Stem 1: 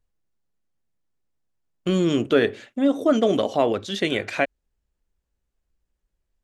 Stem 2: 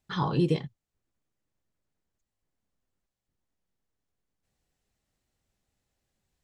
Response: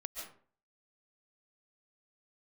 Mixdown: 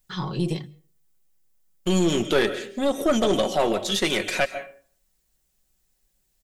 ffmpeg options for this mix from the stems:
-filter_complex "[0:a]volume=-1.5dB,asplit=2[link_01][link_02];[link_02]volume=-6dB[link_03];[1:a]acrossover=split=480[link_04][link_05];[link_05]acompressor=threshold=-40dB:ratio=1.5[link_06];[link_04][link_06]amix=inputs=2:normalize=0,bandreject=frequency=50:width_type=h:width=6,bandreject=frequency=100:width_type=h:width=6,bandreject=frequency=150:width_type=h:width=6,bandreject=frequency=200:width_type=h:width=6,bandreject=frequency=250:width_type=h:width=6,bandreject=frequency=300:width_type=h:width=6,bandreject=frequency=350:width_type=h:width=6,volume=0dB,asplit=2[link_07][link_08];[link_08]volume=-23dB[link_09];[2:a]atrim=start_sample=2205[link_10];[link_03][link_09]amix=inputs=2:normalize=0[link_11];[link_11][link_10]afir=irnorm=-1:irlink=0[link_12];[link_01][link_07][link_12]amix=inputs=3:normalize=0,aemphasis=mode=production:type=75kf,aecho=1:1:5.4:0.43,aeval=exprs='(tanh(4.47*val(0)+0.45)-tanh(0.45))/4.47':channel_layout=same"

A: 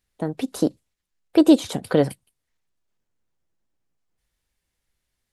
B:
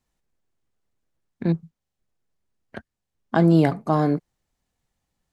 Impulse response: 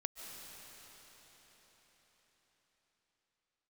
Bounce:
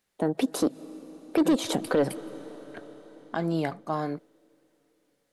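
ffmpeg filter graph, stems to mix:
-filter_complex "[0:a]highpass=170,equalizer=frequency=520:width=0.41:gain=4.5,acontrast=89,volume=-7.5dB,asplit=2[link_01][link_02];[link_02]volume=-14.5dB[link_03];[1:a]lowshelf=frequency=380:gain=-10,volume=-5dB[link_04];[2:a]atrim=start_sample=2205[link_05];[link_03][link_05]afir=irnorm=-1:irlink=0[link_06];[link_01][link_04][link_06]amix=inputs=3:normalize=0,alimiter=limit=-15.5dB:level=0:latency=1:release=121"

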